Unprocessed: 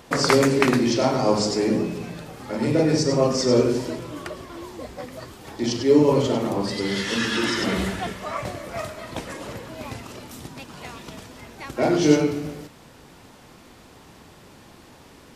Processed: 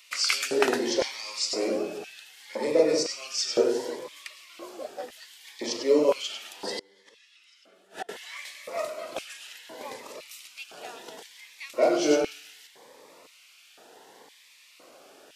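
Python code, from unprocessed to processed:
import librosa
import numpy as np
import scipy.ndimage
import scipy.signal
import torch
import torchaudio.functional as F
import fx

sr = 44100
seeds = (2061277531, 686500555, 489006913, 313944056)

y = fx.filter_lfo_highpass(x, sr, shape='square', hz=0.98, low_hz=520.0, high_hz=2500.0, q=1.9)
y = fx.gate_flip(y, sr, shuts_db=-18.0, range_db=-30, at=(6.77, 8.09))
y = fx.notch_cascade(y, sr, direction='rising', hz=0.68)
y = y * 10.0 ** (-2.0 / 20.0)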